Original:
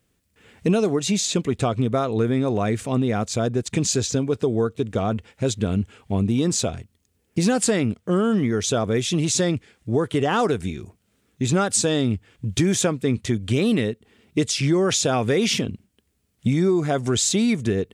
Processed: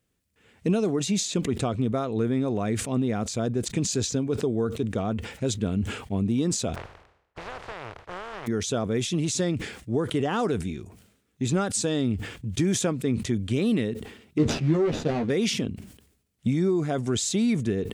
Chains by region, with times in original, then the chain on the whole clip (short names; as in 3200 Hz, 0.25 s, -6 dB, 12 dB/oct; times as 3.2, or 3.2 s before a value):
6.74–8.46 spectral contrast lowered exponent 0.2 + Bessel low-pass 950 Hz + bell 230 Hz -15 dB 1.1 oct
14.38–15.3 median filter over 41 samples + LPF 5900 Hz + doubler 13 ms -3 dB
whole clip: dynamic EQ 240 Hz, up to +4 dB, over -30 dBFS, Q 0.87; sustainer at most 80 dB/s; gain -7 dB